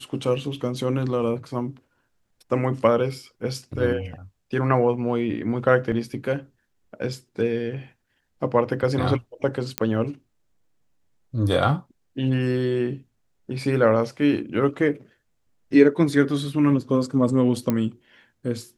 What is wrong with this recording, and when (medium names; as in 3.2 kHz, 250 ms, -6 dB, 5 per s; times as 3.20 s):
5.92 s: dropout 2.6 ms
9.78 s: pop -5 dBFS
17.70 s: pop -10 dBFS